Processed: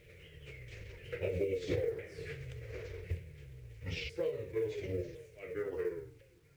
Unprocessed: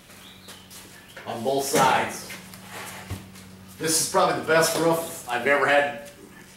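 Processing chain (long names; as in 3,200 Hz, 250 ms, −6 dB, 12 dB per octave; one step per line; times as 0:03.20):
pitch shifter swept by a sawtooth −11.5 semitones, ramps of 1,014 ms
source passing by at 0:01.52, 15 m/s, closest 8.9 metres
drawn EQ curve 130 Hz 0 dB, 230 Hz −25 dB, 460 Hz +4 dB, 770 Hz −26 dB, 1,100 Hz −27 dB, 2,200 Hz −4 dB, 3,500 Hz −18 dB, 5,900 Hz −22 dB, 10,000 Hz −28 dB
downward compressor 16 to 1, threshold −39 dBFS, peak gain reduction 21.5 dB
log-companded quantiser 8 bits
level +8 dB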